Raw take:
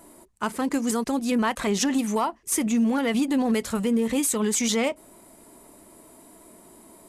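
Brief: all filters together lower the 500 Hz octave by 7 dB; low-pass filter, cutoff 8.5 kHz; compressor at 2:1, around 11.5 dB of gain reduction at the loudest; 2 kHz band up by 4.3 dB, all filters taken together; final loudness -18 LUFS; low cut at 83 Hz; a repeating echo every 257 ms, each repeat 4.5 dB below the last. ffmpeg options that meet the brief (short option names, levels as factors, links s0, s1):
-af "highpass=83,lowpass=8500,equalizer=f=500:t=o:g=-8.5,equalizer=f=2000:t=o:g=5.5,acompressor=threshold=0.00708:ratio=2,aecho=1:1:257|514|771|1028|1285|1542|1799|2056|2313:0.596|0.357|0.214|0.129|0.0772|0.0463|0.0278|0.0167|0.01,volume=7.08"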